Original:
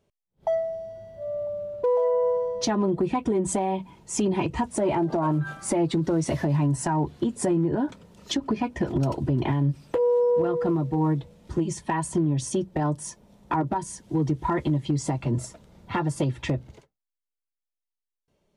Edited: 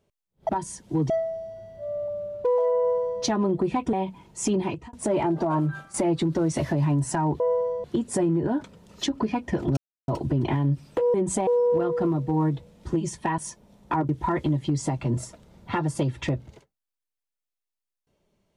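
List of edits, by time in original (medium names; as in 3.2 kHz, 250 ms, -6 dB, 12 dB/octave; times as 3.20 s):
2.16–2.60 s: copy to 7.12 s
3.32–3.65 s: move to 10.11 s
4.29–4.65 s: fade out
5.38–5.66 s: fade out, to -12 dB
9.05 s: insert silence 0.31 s
12.02–12.98 s: delete
13.69–14.30 s: move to 0.49 s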